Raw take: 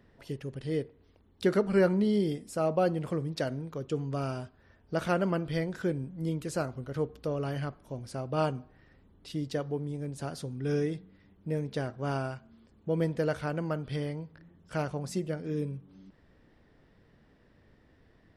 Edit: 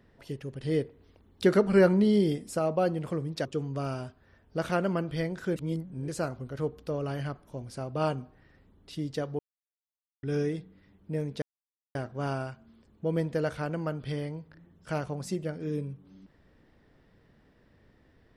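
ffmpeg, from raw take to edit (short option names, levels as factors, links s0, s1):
-filter_complex "[0:a]asplit=9[s0][s1][s2][s3][s4][s5][s6][s7][s8];[s0]atrim=end=0.622[s9];[s1]atrim=start=0.618:end=2.592,asetpts=PTS-STARTPTS,volume=1.5[s10];[s2]atrim=start=2.588:end=3.452[s11];[s3]atrim=start=3.818:end=5.932[s12];[s4]atrim=start=5.928:end=6.452,asetpts=PTS-STARTPTS,areverse[s13];[s5]atrim=start=6.448:end=9.76,asetpts=PTS-STARTPTS,afade=t=out:st=3.308:d=0.004:c=hsin[s14];[s6]atrim=start=9.76:end=10.6,asetpts=PTS-STARTPTS,volume=0[s15];[s7]atrim=start=10.6:end=11.79,asetpts=PTS-STARTPTS,afade=t=in:d=0.004:c=hsin,afade=t=out:st=1.186:d=0.004:c=hsin,apad=pad_dur=0.53[s16];[s8]atrim=start=11.79,asetpts=PTS-STARTPTS,afade=t=in:d=0.004:c=hsin[s17];[s9][s10]acrossfade=d=0.004:c1=hsin:c2=hsin[s18];[s18][s11]acrossfade=d=0.004:c1=hsin:c2=hsin[s19];[s19][s12]acrossfade=d=0.004:c1=hsin:c2=hsin[s20];[s20][s13]acrossfade=d=0.004:c1=hsin:c2=hsin[s21];[s14][s15][s16][s17]concat=n=4:v=0:a=1[s22];[s21][s22]acrossfade=d=0.004:c1=hsin:c2=hsin"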